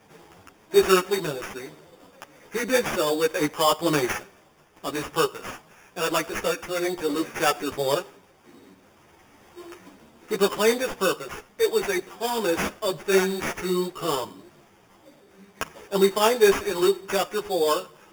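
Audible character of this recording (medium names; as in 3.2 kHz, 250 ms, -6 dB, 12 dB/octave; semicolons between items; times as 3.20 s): aliases and images of a low sample rate 4.1 kHz, jitter 0%; a shimmering, thickened sound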